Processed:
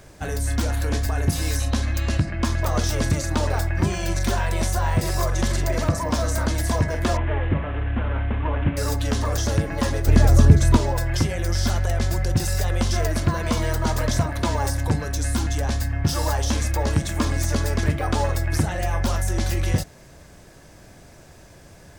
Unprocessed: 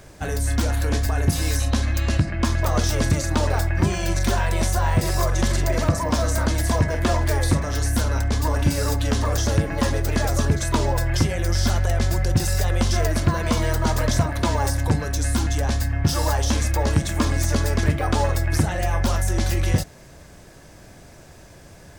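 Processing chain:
0:07.17–0:08.77: variable-slope delta modulation 16 kbit/s
0:10.07–0:10.77: low-shelf EQ 320 Hz +11 dB
level −1.5 dB

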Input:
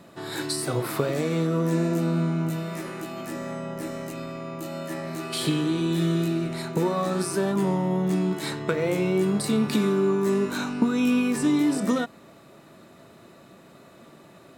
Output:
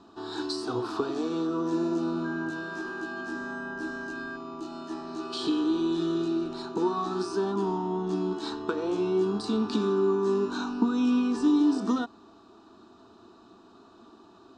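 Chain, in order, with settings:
low-pass filter 5,600 Hz 24 dB per octave
phaser with its sweep stopped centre 560 Hz, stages 6
0:02.24–0:04.35: steady tone 1,600 Hz −37 dBFS

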